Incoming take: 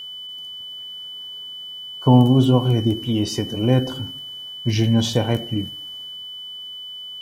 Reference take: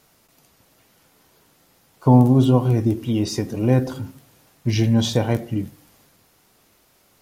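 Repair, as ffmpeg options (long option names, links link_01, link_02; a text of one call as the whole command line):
ffmpeg -i in.wav -af "bandreject=frequency=3000:width=30" out.wav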